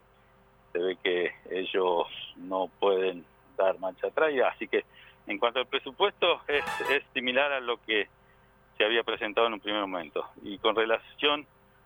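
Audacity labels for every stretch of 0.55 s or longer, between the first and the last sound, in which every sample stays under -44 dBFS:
8.050000	8.800000	silence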